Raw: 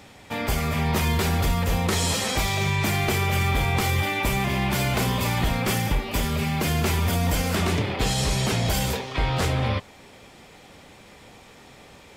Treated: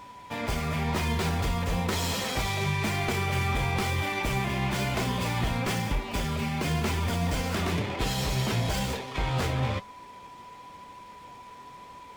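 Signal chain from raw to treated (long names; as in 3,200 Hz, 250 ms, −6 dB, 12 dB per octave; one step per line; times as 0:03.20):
steady tone 990 Hz −40 dBFS
flanger 1 Hz, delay 2.7 ms, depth 6.7 ms, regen +71%
windowed peak hold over 3 samples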